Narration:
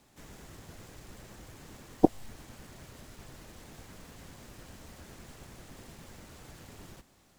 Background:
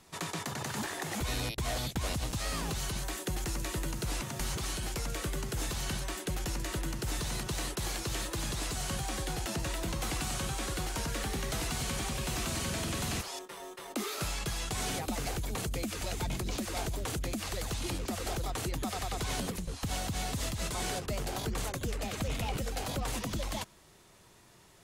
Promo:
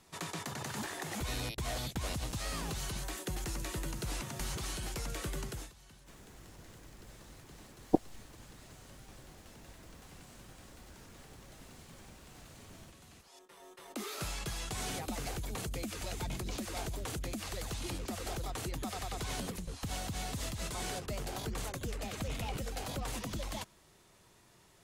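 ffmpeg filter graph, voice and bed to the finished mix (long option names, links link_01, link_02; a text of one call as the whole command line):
ffmpeg -i stem1.wav -i stem2.wav -filter_complex "[0:a]adelay=5900,volume=-5.5dB[link_01];[1:a]volume=16dB,afade=type=out:start_time=5.45:duration=0.27:silence=0.1,afade=type=in:start_time=13.22:duration=0.96:silence=0.105925[link_02];[link_01][link_02]amix=inputs=2:normalize=0" out.wav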